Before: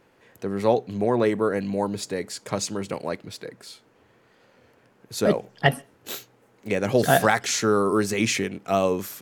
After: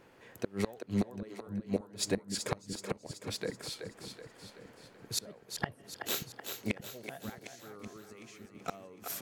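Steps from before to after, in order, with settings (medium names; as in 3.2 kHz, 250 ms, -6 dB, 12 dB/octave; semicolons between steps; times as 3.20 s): inverted gate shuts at -18 dBFS, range -30 dB; two-band feedback delay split 310 Hz, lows 580 ms, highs 378 ms, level -7 dB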